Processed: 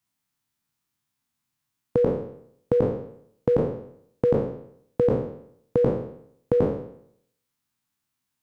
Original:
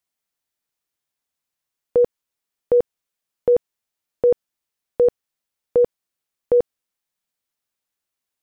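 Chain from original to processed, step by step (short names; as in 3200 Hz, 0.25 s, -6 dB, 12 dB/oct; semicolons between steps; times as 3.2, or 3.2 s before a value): spectral trails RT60 0.68 s; graphic EQ 125/250/500/1000 Hz +12/+8/-9/+4 dB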